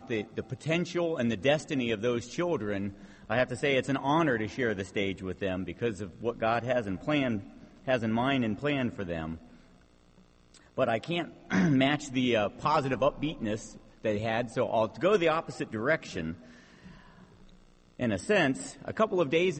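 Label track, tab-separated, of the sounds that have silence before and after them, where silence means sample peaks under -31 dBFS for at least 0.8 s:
10.780000	16.320000	sound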